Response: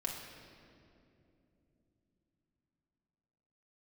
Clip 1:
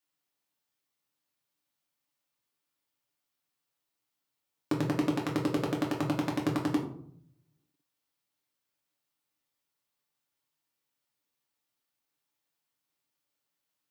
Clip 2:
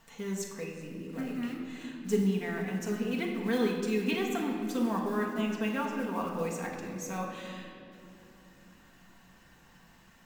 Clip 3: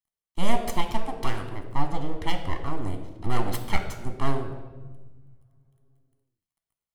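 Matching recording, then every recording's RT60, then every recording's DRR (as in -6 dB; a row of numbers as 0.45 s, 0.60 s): 2; 0.65 s, 2.9 s, 1.3 s; -2.0 dB, -1.5 dB, 5.0 dB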